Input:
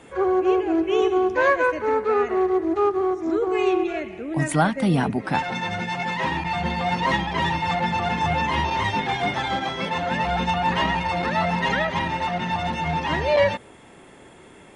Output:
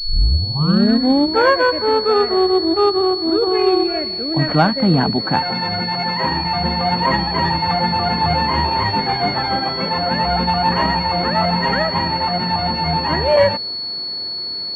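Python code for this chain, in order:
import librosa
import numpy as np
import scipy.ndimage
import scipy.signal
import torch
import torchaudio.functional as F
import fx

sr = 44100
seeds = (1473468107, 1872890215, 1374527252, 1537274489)

y = fx.tape_start_head(x, sr, length_s=1.55)
y = fx.pwm(y, sr, carrier_hz=4400.0)
y = y * librosa.db_to_amplitude(5.5)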